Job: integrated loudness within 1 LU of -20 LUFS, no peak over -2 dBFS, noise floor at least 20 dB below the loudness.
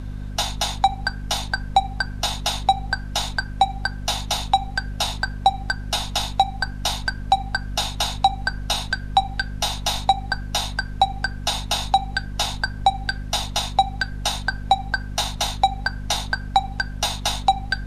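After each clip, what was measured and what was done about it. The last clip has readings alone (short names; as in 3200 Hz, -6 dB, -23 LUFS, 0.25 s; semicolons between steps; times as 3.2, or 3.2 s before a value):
hum 50 Hz; harmonics up to 250 Hz; hum level -28 dBFS; noise floor -33 dBFS; noise floor target -44 dBFS; loudness -23.5 LUFS; peak -3.0 dBFS; loudness target -20.0 LUFS
-> de-hum 50 Hz, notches 5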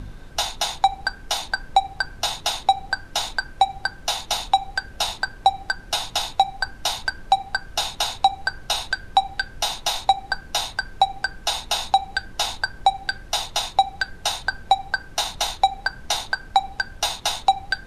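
hum none; noise floor -42 dBFS; noise floor target -44 dBFS
-> noise print and reduce 6 dB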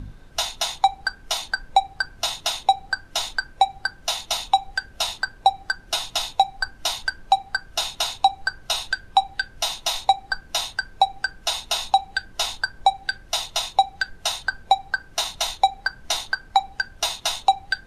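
noise floor -48 dBFS; loudness -24.0 LUFS; peak -4.0 dBFS; loudness target -20.0 LUFS
-> gain +4 dB; limiter -2 dBFS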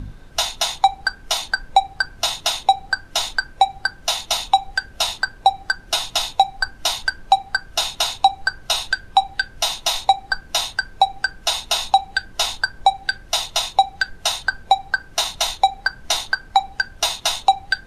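loudness -20.5 LUFS; peak -2.0 dBFS; noise floor -44 dBFS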